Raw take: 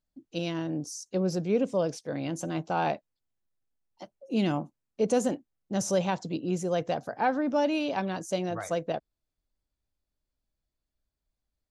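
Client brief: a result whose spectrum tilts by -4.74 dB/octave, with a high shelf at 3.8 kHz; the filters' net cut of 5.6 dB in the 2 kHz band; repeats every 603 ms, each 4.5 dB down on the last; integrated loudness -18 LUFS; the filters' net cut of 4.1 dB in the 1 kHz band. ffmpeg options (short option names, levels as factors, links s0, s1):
-af "equalizer=f=1000:t=o:g=-5,equalizer=f=2000:t=o:g=-9,highshelf=f=3800:g=9,aecho=1:1:603|1206|1809|2412|3015|3618|4221|4824|5427:0.596|0.357|0.214|0.129|0.0772|0.0463|0.0278|0.0167|0.01,volume=3.98"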